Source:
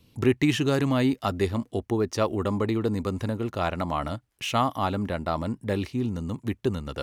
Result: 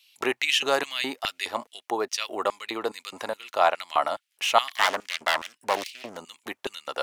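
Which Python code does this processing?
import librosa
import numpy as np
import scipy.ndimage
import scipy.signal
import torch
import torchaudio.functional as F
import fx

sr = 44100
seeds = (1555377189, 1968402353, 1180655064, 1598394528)

y = fx.self_delay(x, sr, depth_ms=0.74, at=(4.68, 6.18))
y = fx.filter_lfo_highpass(y, sr, shape='square', hz=2.4, low_hz=730.0, high_hz=2700.0, q=1.7)
y = F.gain(torch.from_numpy(y), 4.5).numpy()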